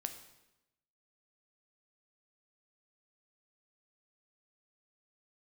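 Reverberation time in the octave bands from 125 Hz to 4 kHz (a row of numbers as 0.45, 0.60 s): 1.1, 1.0, 0.95, 0.90, 0.85, 0.85 s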